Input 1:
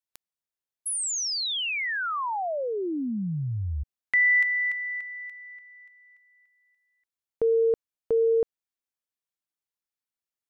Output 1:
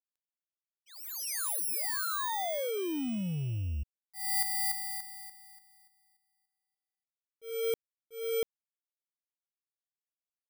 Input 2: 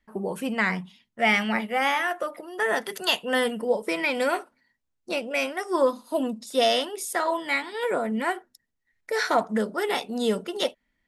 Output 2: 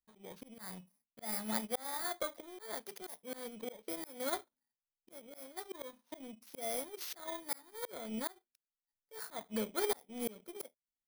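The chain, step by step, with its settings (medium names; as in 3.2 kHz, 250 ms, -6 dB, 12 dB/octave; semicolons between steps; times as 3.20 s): bit-reversed sample order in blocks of 16 samples; power-law waveshaper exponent 1.4; slow attack 611 ms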